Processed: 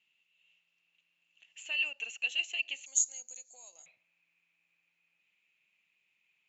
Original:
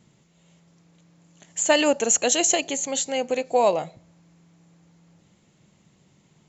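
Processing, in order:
downward compressor 10 to 1, threshold −22 dBFS, peak gain reduction 9 dB
resonant band-pass 2,700 Hz, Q 16, from 0:02.86 6,700 Hz, from 0:03.86 2,500 Hz
level +7 dB

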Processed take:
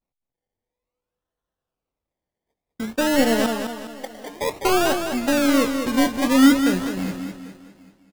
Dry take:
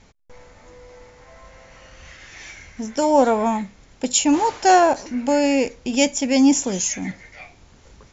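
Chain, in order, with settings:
linear delta modulator 32 kbit/s, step −33.5 dBFS
treble cut that deepens with the level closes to 690 Hz, closed at −15.5 dBFS
noise gate −32 dBFS, range −48 dB
0:03.46–0:04.41: envelope filter 380–1,100 Hz, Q 6.4, up, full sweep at −14.5 dBFS
sample-and-hold swept by an LFO 26×, swing 60% 0.54 Hz
double-tracking delay 22 ms −13 dB
on a send: single-tap delay 787 ms −24 dB
on the sum: feedback echo with a swinging delay time 204 ms, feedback 41%, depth 63 cents, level −7 dB

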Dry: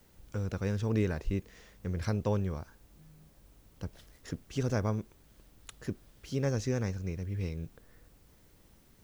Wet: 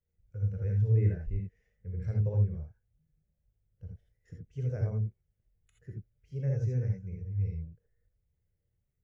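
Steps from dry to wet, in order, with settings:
graphic EQ with 10 bands 125 Hz +5 dB, 250 Hz −10 dB, 500 Hz +4 dB, 1,000 Hz −8 dB, 2,000 Hz +5 dB, 4,000 Hz −6 dB
reverb whose tail is shaped and stops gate 100 ms rising, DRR 0 dB
every bin expanded away from the loudest bin 1.5 to 1
level −2.5 dB

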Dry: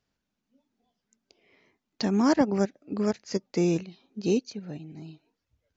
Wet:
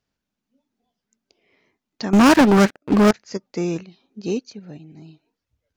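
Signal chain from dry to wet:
dynamic equaliser 1,300 Hz, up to +8 dB, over −46 dBFS, Q 1.3
0:02.13–0:03.11: leveller curve on the samples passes 5

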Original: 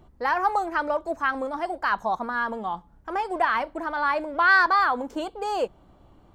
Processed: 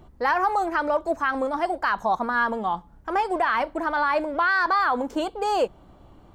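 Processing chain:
brickwall limiter −17.5 dBFS, peak gain reduction 9.5 dB
level +4 dB

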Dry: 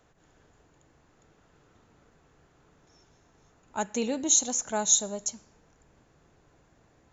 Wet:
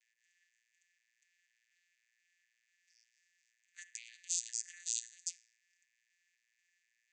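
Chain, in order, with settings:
vocoder with an arpeggio as carrier bare fifth, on A#2, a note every 244 ms
brickwall limiter −24 dBFS, peak gain reduction 10.5 dB
Chebyshev high-pass with heavy ripple 1,700 Hz, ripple 6 dB
level +4 dB

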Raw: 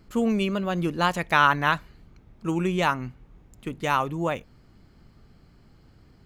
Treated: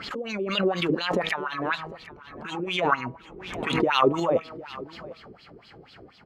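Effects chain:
spectral magnitudes quantised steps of 15 dB
low-shelf EQ 490 Hz +6.5 dB
hum removal 160.7 Hz, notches 8
in parallel at 0 dB: brickwall limiter −15 dBFS, peak gain reduction 10 dB
on the sum: compressor whose output falls as the input rises −21 dBFS, ratio −0.5
LFO wah 4.1 Hz 370–3,900 Hz, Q 3.8
on a send: single-tap delay 753 ms −18 dB
on the sum: background raised ahead of every attack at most 49 dB per second
level +7 dB

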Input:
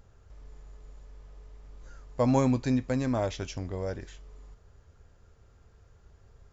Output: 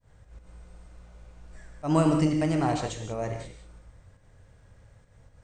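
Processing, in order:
volume swells 118 ms
reverb whose tail is shaped and stops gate 250 ms flat, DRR 3.5 dB
speed change +20%
level +1.5 dB

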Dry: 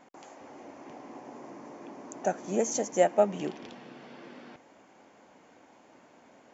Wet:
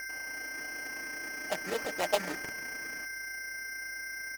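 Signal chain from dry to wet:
comb filter 6.5 ms, depth 36%
steady tone 2,100 Hz −36 dBFS
low-pass with resonance 3,200 Hz, resonance Q 6.2
low-shelf EQ 160 Hz −8.5 dB
decimation without filtering 12×
mains hum 50 Hz, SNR 32 dB
time stretch by overlap-add 0.67×, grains 69 ms
highs frequency-modulated by the lows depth 0.22 ms
level −4 dB

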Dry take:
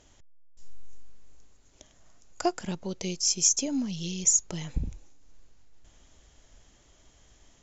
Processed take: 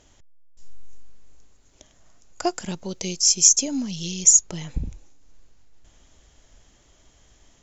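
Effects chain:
0:02.46–0:04.41: high-shelf EQ 5,000 Hz +9 dB
level +2.5 dB

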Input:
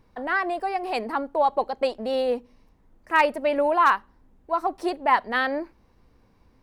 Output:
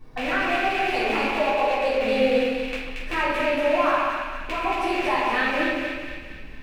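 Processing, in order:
loose part that buzzes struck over −51 dBFS, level −16 dBFS
downward compressor 3 to 1, threshold −36 dBFS, peak gain reduction 16.5 dB
on a send: echo with a time of its own for lows and highs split 1,500 Hz, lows 137 ms, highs 230 ms, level −3 dB
on the sum: rectangular room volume 210 cubic metres, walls mixed, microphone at 3.5 metres

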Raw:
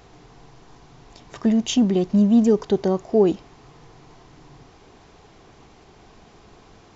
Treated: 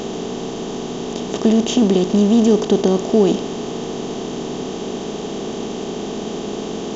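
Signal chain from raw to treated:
compressor on every frequency bin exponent 0.4

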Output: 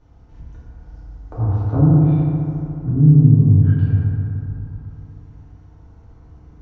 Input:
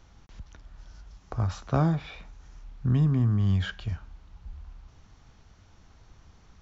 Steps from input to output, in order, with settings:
treble cut that deepens with the level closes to 460 Hz, closed at −19.5 dBFS
tilt shelving filter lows +8.5 dB, about 1,300 Hz
feedback delay network reverb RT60 3 s, high-frequency decay 0.4×, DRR −9.5 dB
level −8.5 dB

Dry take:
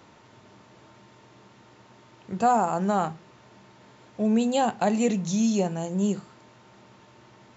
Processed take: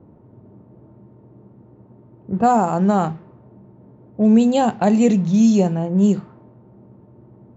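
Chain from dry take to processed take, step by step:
low-pass that shuts in the quiet parts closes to 490 Hz, open at −18.5 dBFS
low-shelf EQ 450 Hz +9 dB
level +2.5 dB

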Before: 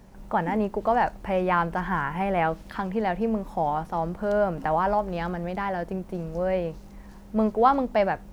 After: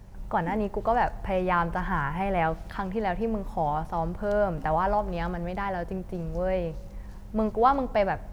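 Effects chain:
low shelf with overshoot 150 Hz +7.5 dB, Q 1.5
on a send: convolution reverb RT60 1.7 s, pre-delay 3 ms, DRR 22.5 dB
on the sum: level −1.5 dB

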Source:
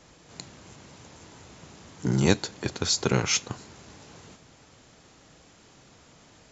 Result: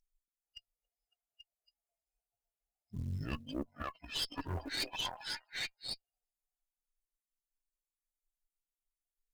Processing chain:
spectral dynamics exaggerated over time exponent 3
parametric band 6,600 Hz −2 dB 0.99 octaves
on a send: echo through a band-pass that steps 194 ms, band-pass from 510 Hz, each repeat 1.4 octaves, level −0.5 dB
on the sum: phase shifter 0.42 Hz, delay 2.7 ms, feedback 21%
high-shelf EQ 4,000 Hz +9 dB
change of speed 0.698×
notch filter 1,100 Hz, Q 27
reversed playback
downward compressor 16 to 1, threshold −31 dBFS, peak gain reduction 17.5 dB
reversed playback
floating-point word with a short mantissa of 4 bits
tube saturation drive 33 dB, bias 0.7
level +2.5 dB

